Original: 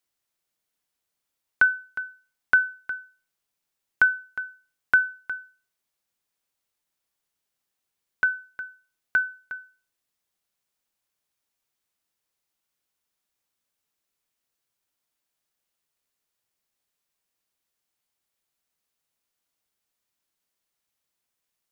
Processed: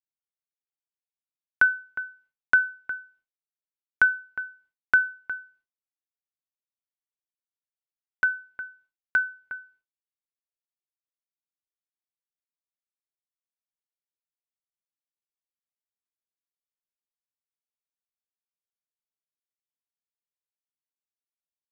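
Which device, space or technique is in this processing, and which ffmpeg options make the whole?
hearing-loss simulation: -af "lowpass=2500,agate=range=-33dB:threshold=-57dB:ratio=3:detection=peak"

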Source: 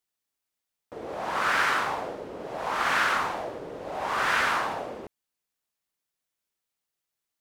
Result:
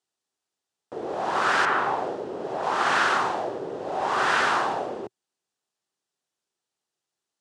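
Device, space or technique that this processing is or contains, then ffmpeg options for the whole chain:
car door speaker: -filter_complex "[0:a]asettb=1/sr,asplit=3[link_01][link_02][link_03];[link_01]atrim=end=1.654[link_04];[link_02]atrim=start=1.65:end=2.63,asetpts=PTS-STARTPTS,afade=type=in:duration=0.004:curve=qsin,afade=type=out:start_time=0.976:duration=0.004:curve=qsin,acrossover=split=2700[link_05][link_06];[link_06]acompressor=threshold=-51dB:ratio=4:attack=1:release=60[link_07];[link_05][link_07]amix=inputs=2:normalize=0[link_08];[link_03]atrim=start=2.626[link_09];[link_04][link_08]acrossfade=duration=0.004:curve1=hsin:curve2=qsin[link_10];[link_10][link_09]acrossfade=duration=0.004:curve1=qsin:curve2=hsin,highpass=110,equalizer=frequency=380:width_type=q:width=4:gain=7,equalizer=frequency=780:width_type=q:width=4:gain=4,equalizer=frequency=2200:width_type=q:width=4:gain=-6,lowpass=frequency=9000:width=0.5412,lowpass=frequency=9000:width=1.3066,equalizer=frequency=120:width=2.5:gain=2,volume=2.5dB"

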